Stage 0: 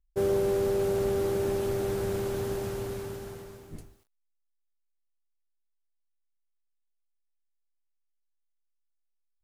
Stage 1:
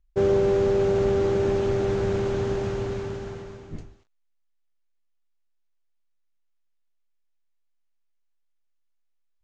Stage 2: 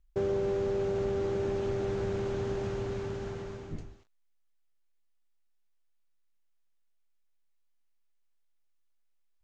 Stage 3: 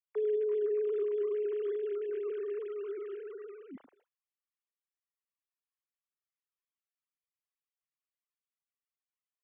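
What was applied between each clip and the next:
Chebyshev low-pass 6.9 kHz, order 4; tone controls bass +2 dB, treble -6 dB; trim +6 dB
compression 2:1, threshold -35 dBFS, peak gain reduction 9.5 dB
formants replaced by sine waves; trim -2 dB

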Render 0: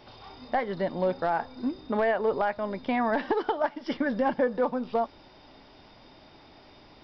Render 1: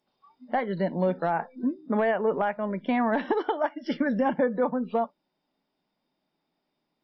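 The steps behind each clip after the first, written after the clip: spectral noise reduction 27 dB; resonant low shelf 130 Hz -8.5 dB, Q 3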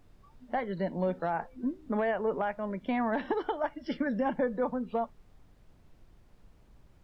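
added noise brown -51 dBFS; trim -5 dB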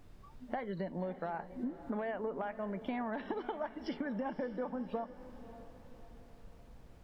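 compression, threshold -38 dBFS, peak gain reduction 12.5 dB; echo that smears into a reverb 562 ms, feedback 47%, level -14.5 dB; trim +2.5 dB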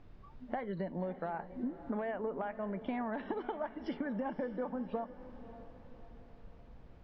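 distance through air 180 m; trim +1 dB

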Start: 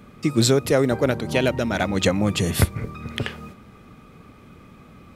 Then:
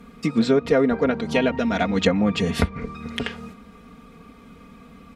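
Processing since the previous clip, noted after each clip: low-pass that closes with the level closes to 2.5 kHz, closed at -15.5 dBFS; comb 4.3 ms, depth 80%; trim -1.5 dB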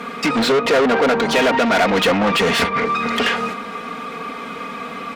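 overdrive pedal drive 34 dB, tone 2.5 kHz, clips at -3.5 dBFS; bass shelf 190 Hz -11 dB; trim -2.5 dB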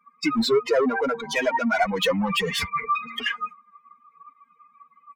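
expander on every frequency bin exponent 3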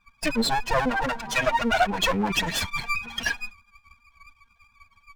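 comb filter that takes the minimum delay 1.2 ms; trim +1.5 dB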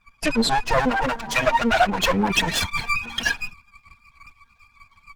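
trim +4 dB; Opus 16 kbps 48 kHz

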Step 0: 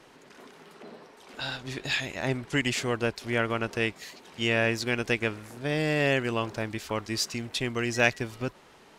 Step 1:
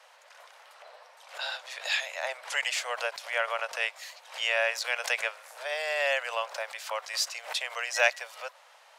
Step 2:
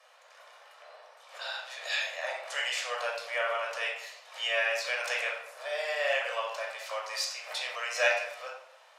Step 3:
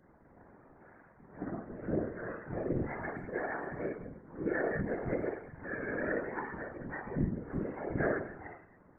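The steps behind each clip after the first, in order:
steep high-pass 530 Hz 72 dB/octave; swell ahead of each attack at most 150 dB/s
reverberation RT60 0.75 s, pre-delay 15 ms, DRR -2 dB; trim -7.5 dB
spectrum inverted on a logarithmic axis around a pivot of 1 kHz; whisper effect; loudspeaker Doppler distortion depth 0.15 ms; trim -4.5 dB

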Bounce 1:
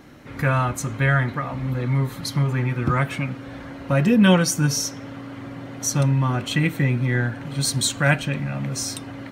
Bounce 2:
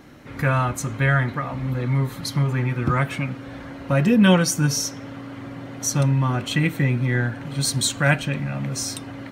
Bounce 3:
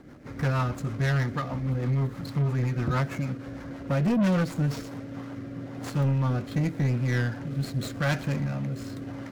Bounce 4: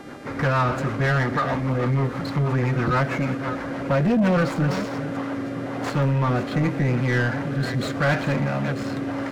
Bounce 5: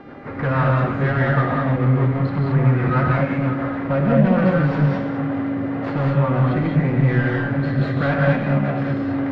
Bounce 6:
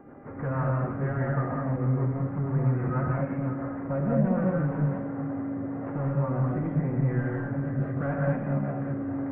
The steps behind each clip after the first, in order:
no audible change
median filter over 15 samples; rotary cabinet horn 6.3 Hz, later 0.9 Hz, at 4.56 s; saturation -20 dBFS, distortion -11 dB
chunks repeated in reverse 323 ms, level -13 dB; mains buzz 400 Hz, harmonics 31, -60 dBFS -3 dB/octave; overdrive pedal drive 17 dB, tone 1.5 kHz, clips at -18 dBFS; trim +5.5 dB
distance through air 340 m; gated-style reverb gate 240 ms rising, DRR -1.5 dB
Gaussian low-pass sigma 5.1 samples; trim -8.5 dB

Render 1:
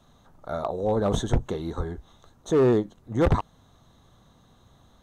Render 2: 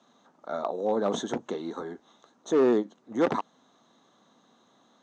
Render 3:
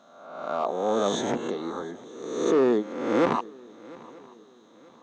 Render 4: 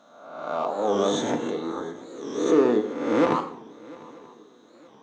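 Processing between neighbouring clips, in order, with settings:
Chebyshev band-pass 230–6700 Hz, order 3; trim -1 dB
reverse spectral sustain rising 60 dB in 1.02 s; shuffle delay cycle 933 ms, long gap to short 3:1, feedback 34%, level -22 dB
FDN reverb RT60 0.72 s, low-frequency decay 1.2×, high-frequency decay 0.9×, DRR 5.5 dB; warped record 45 rpm, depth 160 cents

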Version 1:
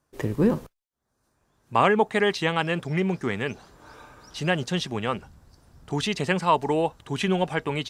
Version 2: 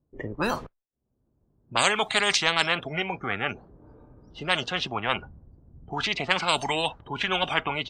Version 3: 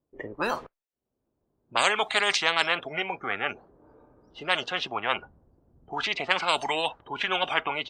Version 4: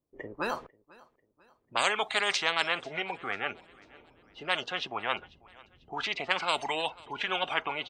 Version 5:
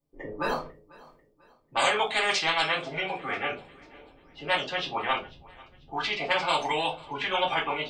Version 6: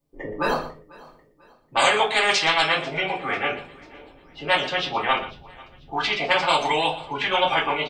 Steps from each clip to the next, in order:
spectral noise reduction 21 dB; level-controlled noise filter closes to 350 Hz, open at -17.5 dBFS; spectrum-flattening compressor 4:1; trim +3 dB
tone controls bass -12 dB, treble -5 dB
feedback delay 493 ms, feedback 44%, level -23.5 dB; trim -4 dB
reverse; upward compressor, threshold -50 dBFS; reverse; reverberation RT60 0.30 s, pre-delay 3 ms, DRR -5 dB; trim -3 dB
delay 119 ms -14.5 dB; trim +5.5 dB

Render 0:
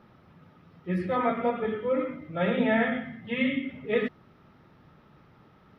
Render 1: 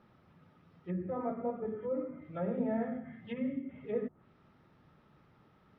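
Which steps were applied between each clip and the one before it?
low-pass that closes with the level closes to 750 Hz, closed at -26 dBFS; trim -7.5 dB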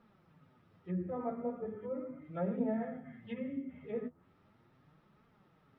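flange 0.38 Hz, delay 4.2 ms, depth 9.1 ms, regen +34%; trim +1 dB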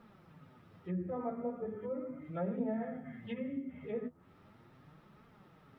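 compression 1.5:1, threshold -53 dBFS, peak gain reduction 9 dB; trim +6.5 dB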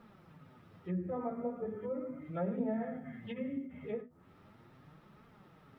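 endings held to a fixed fall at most 180 dB/s; trim +1 dB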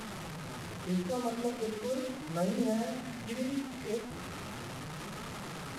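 one-bit delta coder 64 kbps, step -39.5 dBFS; trim +3.5 dB

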